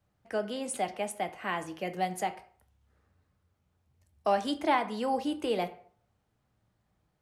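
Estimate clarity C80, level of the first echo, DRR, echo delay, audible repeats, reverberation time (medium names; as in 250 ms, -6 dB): 18.0 dB, no echo, 8.0 dB, no echo, no echo, 0.50 s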